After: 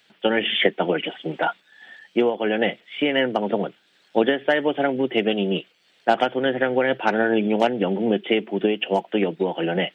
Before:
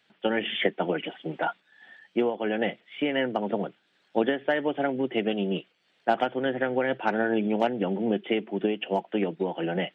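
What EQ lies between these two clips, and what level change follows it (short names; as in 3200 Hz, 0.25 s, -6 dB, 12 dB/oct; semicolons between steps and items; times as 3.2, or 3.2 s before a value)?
bell 460 Hz +2 dB; high shelf 3100 Hz +9 dB; +4.0 dB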